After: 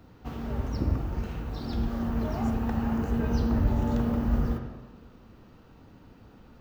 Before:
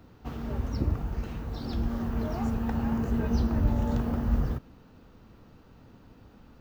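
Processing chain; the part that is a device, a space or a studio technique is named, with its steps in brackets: filtered reverb send (on a send: high-pass 180 Hz 6 dB/octave + low-pass 3.9 kHz + reverberation RT60 1.2 s, pre-delay 39 ms, DRR 4 dB)

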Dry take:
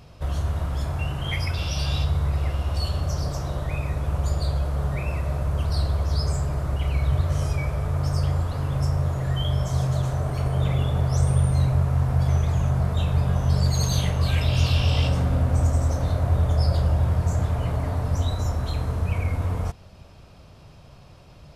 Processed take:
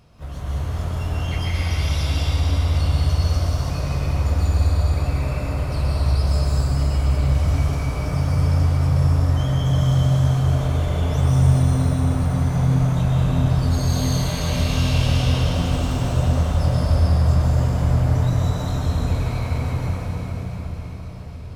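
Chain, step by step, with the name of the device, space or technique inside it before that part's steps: shimmer-style reverb (harmony voices +12 st -12 dB; reverberation RT60 6.0 s, pre-delay 116 ms, DRR -8 dB); trim -6.5 dB

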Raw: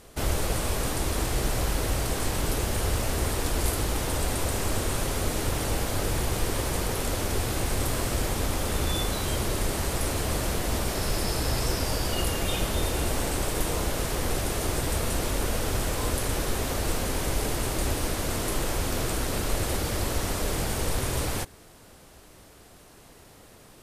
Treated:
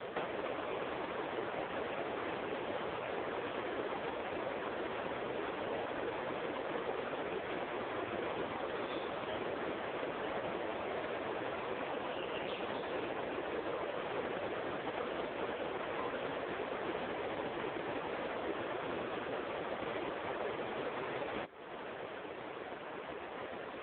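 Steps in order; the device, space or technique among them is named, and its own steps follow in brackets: voicemail (band-pass 330–2700 Hz; compression 8:1, threshold -49 dBFS, peak gain reduction 19.5 dB; trim +16 dB; AMR-NB 4.75 kbps 8 kHz)

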